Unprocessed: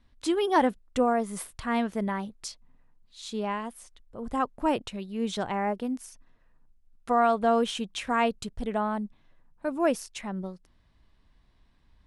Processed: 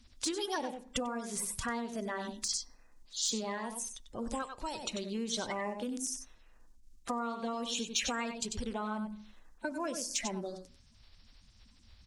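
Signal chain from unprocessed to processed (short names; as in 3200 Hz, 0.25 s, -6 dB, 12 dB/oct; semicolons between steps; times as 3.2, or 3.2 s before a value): bin magnitudes rounded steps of 30 dB; echo 94 ms -9.5 dB; on a send at -15 dB: reverb RT60 0.40 s, pre-delay 3 ms; on the sum: compressor 8:1, threshold -34 dBFS, peak gain reduction 17 dB; bell 6400 Hz +15 dB 1.6 oct; de-esser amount 55%; 4.42–4.83 fifteen-band EQ 250 Hz -10 dB, 630 Hz -5 dB, 4000 Hz +9 dB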